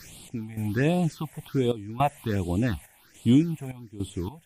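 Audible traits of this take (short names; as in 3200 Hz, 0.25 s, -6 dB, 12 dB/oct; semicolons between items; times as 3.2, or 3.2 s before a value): a quantiser's noise floor 8-bit, dither triangular; phasing stages 6, 1.3 Hz, lowest notch 310–1700 Hz; random-step tremolo 3.5 Hz, depth 90%; MP3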